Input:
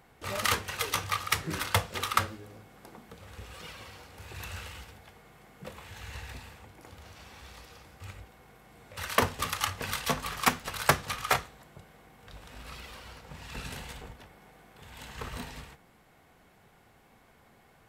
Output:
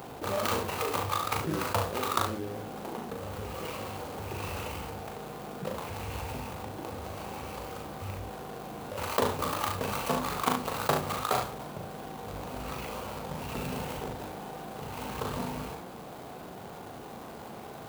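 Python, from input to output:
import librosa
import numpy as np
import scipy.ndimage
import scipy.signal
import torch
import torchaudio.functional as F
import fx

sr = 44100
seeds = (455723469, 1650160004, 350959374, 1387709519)

y = scipy.ndimage.median_filter(x, 25, mode='constant')
y = fx.highpass(y, sr, hz=240.0, slope=6)
y = fx.high_shelf(y, sr, hz=10000.0, db=11.5)
y = fx.room_early_taps(y, sr, ms=(39, 71), db=(-5.5, -11.0))
y = fx.env_flatten(y, sr, amount_pct=50)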